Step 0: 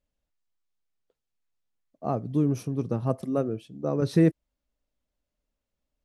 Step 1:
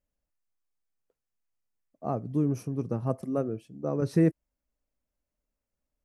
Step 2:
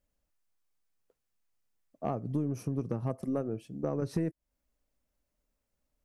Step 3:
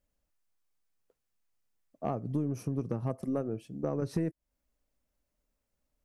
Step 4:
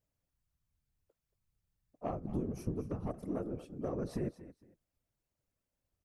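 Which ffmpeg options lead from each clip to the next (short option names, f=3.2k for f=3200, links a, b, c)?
-af "equalizer=f=3.6k:w=2.3:g=-10,volume=-2.5dB"
-af "acompressor=threshold=-33dB:ratio=6,aeval=exprs='0.0596*(cos(1*acos(clip(val(0)/0.0596,-1,1)))-cos(1*PI/2))+0.00211*(cos(4*acos(clip(val(0)/0.0596,-1,1)))-cos(4*PI/2))':c=same,volume=4dB"
-af anull
-af "aecho=1:1:228|456:0.178|0.0391,afftfilt=real='hypot(re,im)*cos(2*PI*random(0))':imag='hypot(re,im)*sin(2*PI*random(1))':win_size=512:overlap=0.75,volume=1dB"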